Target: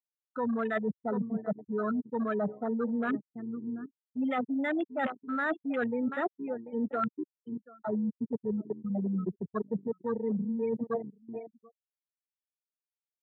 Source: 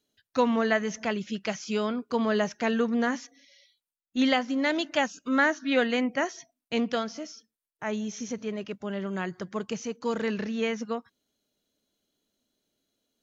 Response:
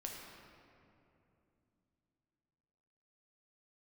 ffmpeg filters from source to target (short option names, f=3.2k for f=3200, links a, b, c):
-filter_complex "[0:a]aeval=exprs='val(0)+0.000794*(sin(2*PI*60*n/s)+sin(2*PI*2*60*n/s)/2+sin(2*PI*3*60*n/s)/3+sin(2*PI*4*60*n/s)/4+sin(2*PI*5*60*n/s)/5)':c=same,highpass=110,equalizer=f=1.3k:w=5.7:g=9,afftfilt=real='re*gte(hypot(re,im),0.178)':imag='im*gte(hypot(re,im),0.178)':win_size=1024:overlap=0.75,aecho=1:1:736:0.15,asplit=2[a][b];[b]alimiter=limit=-21dB:level=0:latency=1:release=20,volume=-2.5dB[c];[a][c]amix=inputs=2:normalize=0,acontrast=26,afwtdn=0.0708,areverse,acompressor=threshold=-26dB:ratio=10,areverse,volume=-2dB"